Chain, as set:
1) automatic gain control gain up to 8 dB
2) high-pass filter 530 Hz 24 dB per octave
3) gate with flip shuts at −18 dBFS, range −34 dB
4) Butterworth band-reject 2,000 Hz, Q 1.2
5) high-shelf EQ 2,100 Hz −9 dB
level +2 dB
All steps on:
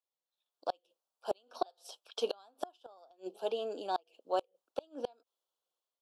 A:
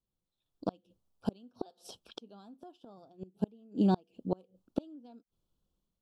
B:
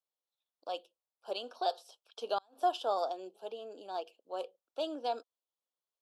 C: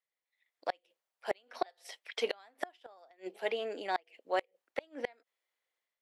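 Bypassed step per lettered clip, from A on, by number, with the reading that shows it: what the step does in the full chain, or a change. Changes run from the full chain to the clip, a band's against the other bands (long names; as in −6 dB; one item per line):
2, 250 Hz band +21.0 dB
1, 8 kHz band −5.0 dB
4, 2 kHz band +13.0 dB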